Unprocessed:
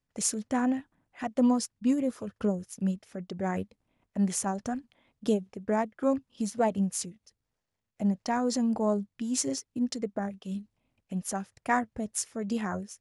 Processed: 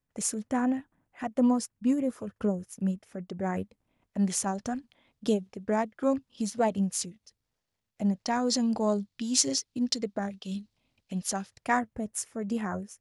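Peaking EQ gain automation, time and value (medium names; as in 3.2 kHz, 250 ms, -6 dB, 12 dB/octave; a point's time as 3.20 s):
peaking EQ 4.3 kHz 1.3 oct
3.48 s -5 dB
4.30 s +4 dB
8.14 s +4 dB
8.72 s +11.5 dB
11.20 s +11.5 dB
11.72 s +4 dB
11.97 s -6 dB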